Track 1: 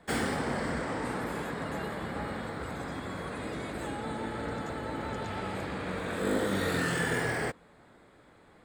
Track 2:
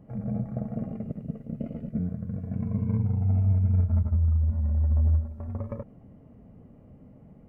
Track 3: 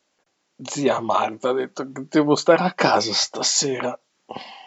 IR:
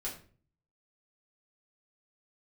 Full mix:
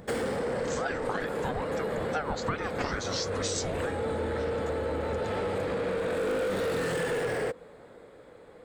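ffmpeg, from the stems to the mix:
-filter_complex "[0:a]equalizer=frequency=490:width=2.8:gain=14,dynaudnorm=framelen=210:gausssize=17:maxgain=5dB,asoftclip=type=tanh:threshold=-22.5dB,volume=2dB[link_01];[1:a]acompressor=mode=upward:threshold=-25dB:ratio=2.5,volume=-12.5dB[link_02];[2:a]aeval=exprs='val(0)*sin(2*PI*660*n/s+660*0.65/2.3*sin(2*PI*2.3*n/s))':channel_layout=same,volume=-3dB[link_03];[link_01][link_02][link_03]amix=inputs=3:normalize=0,acompressor=threshold=-28dB:ratio=6"

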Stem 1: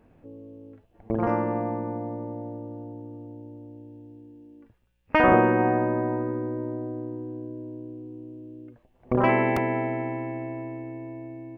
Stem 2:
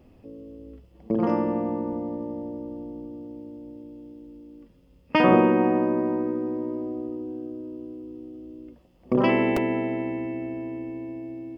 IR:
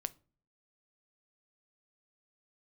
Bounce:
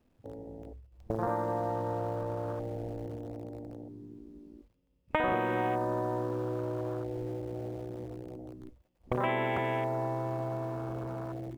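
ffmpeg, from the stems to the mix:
-filter_complex "[0:a]acrusher=bits=7:dc=4:mix=0:aa=0.000001,volume=0dB[link_01];[1:a]acompressor=threshold=-31dB:ratio=6,volume=-1,volume=-0.5dB[link_02];[link_01][link_02]amix=inputs=2:normalize=0,acrossover=split=1100|2300[link_03][link_04][link_05];[link_03]acompressor=threshold=-30dB:ratio=4[link_06];[link_04]acompressor=threshold=-36dB:ratio=4[link_07];[link_05]acompressor=threshold=-44dB:ratio=4[link_08];[link_06][link_07][link_08]amix=inputs=3:normalize=0,afwtdn=0.0178"

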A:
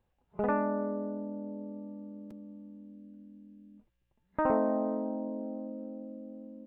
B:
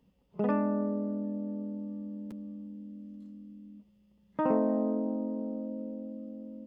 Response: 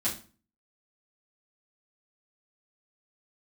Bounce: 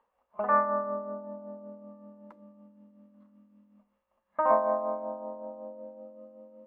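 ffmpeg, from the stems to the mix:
-filter_complex "[0:a]lowshelf=frequency=250:gain=-5,volume=-14dB,asplit=2[link_01][link_02];[link_02]volume=-3.5dB[link_03];[1:a]bandpass=frequency=1200:width_type=q:width=2.3:csg=0,volume=1dB[link_04];[2:a]atrim=start_sample=2205[link_05];[link_03][link_05]afir=irnorm=-1:irlink=0[link_06];[link_01][link_04][link_06]amix=inputs=3:normalize=0,equalizer=frequency=125:width_type=o:width=1:gain=-7,equalizer=frequency=250:width_type=o:width=1:gain=-3,equalizer=frequency=500:width_type=o:width=1:gain=11,equalizer=frequency=1000:width_type=o:width=1:gain=11,equalizer=frequency=2000:width_type=o:width=1:gain=7,tremolo=f=5.3:d=0.5"

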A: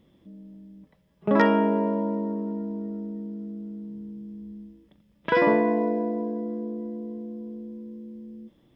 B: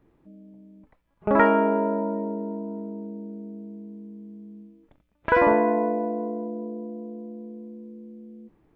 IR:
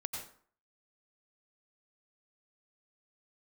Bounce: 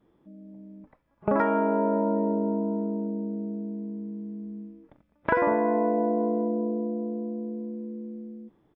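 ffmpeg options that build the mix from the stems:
-filter_complex "[0:a]volume=-13dB[link_01];[1:a]lowpass=1900,lowshelf=frequency=86:gain=-11.5,dynaudnorm=framelen=120:gausssize=9:maxgain=7dB,adelay=4.2,volume=-1dB[link_02];[link_01][link_02]amix=inputs=2:normalize=0,acompressor=threshold=-20dB:ratio=6"

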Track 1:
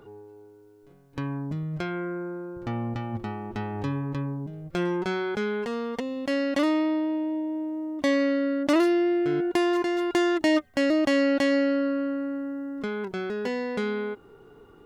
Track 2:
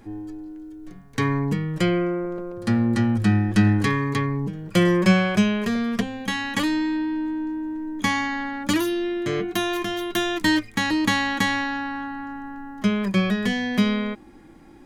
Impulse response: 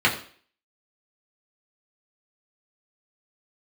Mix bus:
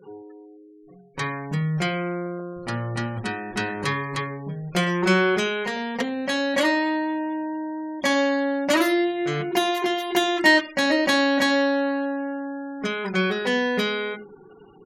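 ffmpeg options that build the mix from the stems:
-filter_complex "[0:a]aecho=1:1:5.3:0.53,volume=-3dB,asplit=2[link_01][link_02];[link_02]volume=-12.5dB[link_03];[1:a]highpass=540,adynamicequalizer=threshold=0.00794:dfrequency=3800:dqfactor=4.1:tfrequency=3800:tqfactor=4.1:attack=5:release=100:ratio=0.375:range=1.5:mode=boostabove:tftype=bell,adelay=13,volume=0dB[link_04];[2:a]atrim=start_sample=2205[link_05];[link_03][link_05]afir=irnorm=-1:irlink=0[link_06];[link_01][link_04][link_06]amix=inputs=3:normalize=0,afftfilt=real='re*gte(hypot(re,im),0.00708)':imag='im*gte(hypot(re,im),0.00708)':win_size=1024:overlap=0.75"

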